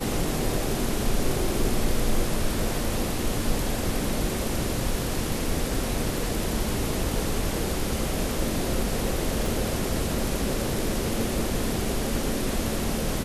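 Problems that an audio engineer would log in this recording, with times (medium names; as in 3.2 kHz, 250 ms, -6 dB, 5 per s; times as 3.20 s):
9.46 s: pop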